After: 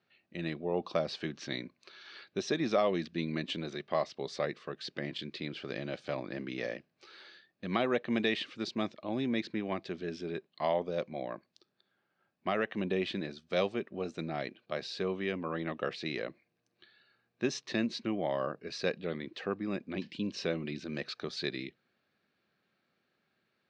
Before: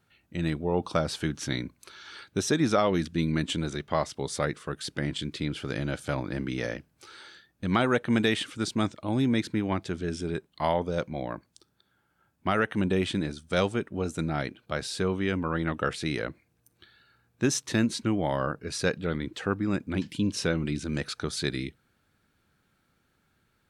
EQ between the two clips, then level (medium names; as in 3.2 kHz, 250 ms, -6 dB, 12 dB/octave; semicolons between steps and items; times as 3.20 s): dynamic bell 1.5 kHz, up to -4 dB, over -44 dBFS, Q 4; cabinet simulation 280–4400 Hz, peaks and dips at 290 Hz -7 dB, 460 Hz -4 dB, 900 Hz -9 dB, 1.4 kHz -9 dB, 2.1 kHz -3 dB, 3.3 kHz -6 dB; 0.0 dB